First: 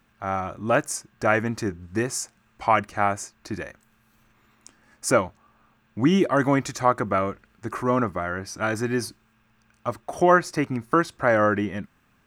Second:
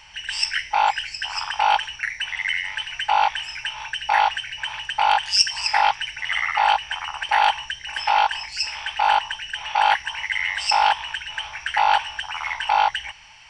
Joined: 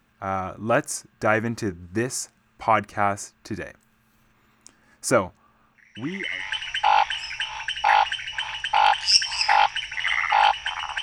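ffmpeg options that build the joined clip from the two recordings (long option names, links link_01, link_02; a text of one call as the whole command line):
ffmpeg -i cue0.wav -i cue1.wav -filter_complex "[0:a]apad=whole_dur=11.02,atrim=end=11.02,atrim=end=6.53,asetpts=PTS-STARTPTS[link_01];[1:a]atrim=start=1.9:end=7.27,asetpts=PTS-STARTPTS[link_02];[link_01][link_02]acrossfade=duration=0.88:curve1=qua:curve2=qua" out.wav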